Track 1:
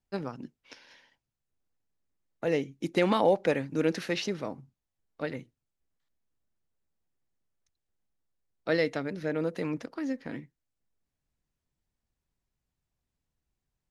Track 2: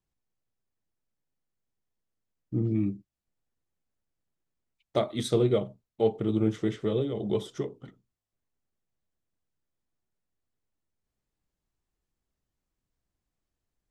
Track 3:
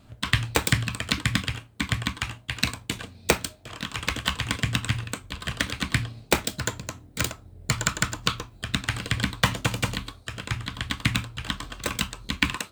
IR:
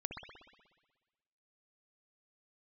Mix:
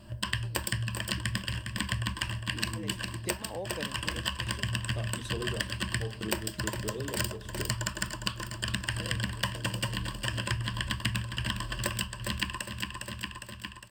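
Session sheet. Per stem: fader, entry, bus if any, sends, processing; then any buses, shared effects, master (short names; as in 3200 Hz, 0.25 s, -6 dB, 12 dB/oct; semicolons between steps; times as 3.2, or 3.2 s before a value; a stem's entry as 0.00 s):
-10.5 dB, 0.30 s, no send, no echo send, dry
-4.5 dB, 0.00 s, no send, no echo send, dry
+1.5 dB, 0.00 s, no send, echo send -12.5 dB, ripple EQ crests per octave 1.3, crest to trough 13 dB; AGC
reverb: off
echo: feedback echo 0.407 s, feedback 56%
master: compressor 4:1, threshold -31 dBFS, peak gain reduction 17.5 dB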